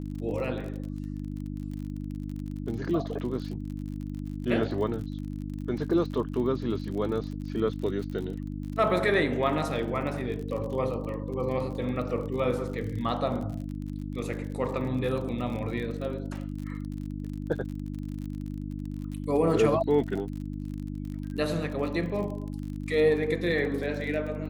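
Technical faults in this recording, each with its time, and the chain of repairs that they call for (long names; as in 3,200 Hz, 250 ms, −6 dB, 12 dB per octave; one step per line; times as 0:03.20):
surface crackle 41 per second −36 dBFS
mains hum 50 Hz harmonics 6 −35 dBFS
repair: click removal
hum removal 50 Hz, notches 6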